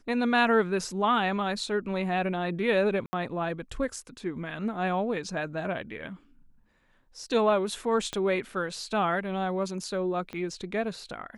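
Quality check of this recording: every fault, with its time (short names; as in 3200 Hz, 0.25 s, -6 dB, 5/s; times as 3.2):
3.06–3.13 gap 70 ms
8.13 pop -18 dBFS
10.33 pop -24 dBFS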